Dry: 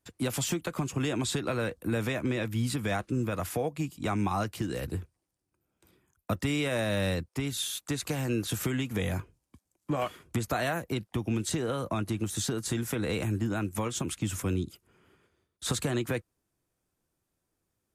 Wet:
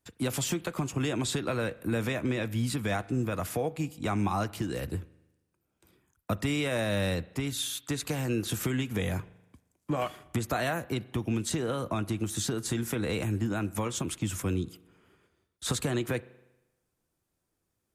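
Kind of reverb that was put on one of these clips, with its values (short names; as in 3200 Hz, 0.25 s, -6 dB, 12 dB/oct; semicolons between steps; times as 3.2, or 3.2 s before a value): spring tank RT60 1 s, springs 39 ms, chirp 30 ms, DRR 19 dB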